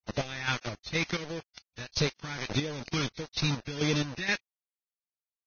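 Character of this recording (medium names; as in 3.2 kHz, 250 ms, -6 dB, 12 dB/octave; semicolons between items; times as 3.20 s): phasing stages 2, 1.6 Hz, lowest notch 580–1200 Hz; a quantiser's noise floor 6-bit, dither none; chopped level 2.1 Hz, depth 65%, duty 45%; Vorbis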